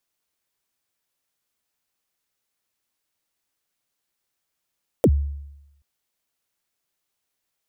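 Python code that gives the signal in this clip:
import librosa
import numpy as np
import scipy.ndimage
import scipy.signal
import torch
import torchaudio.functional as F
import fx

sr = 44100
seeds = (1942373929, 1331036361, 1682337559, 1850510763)

y = fx.drum_kick(sr, seeds[0], length_s=0.78, level_db=-10, start_hz=600.0, end_hz=71.0, sweep_ms=57.0, decay_s=0.92, click=True)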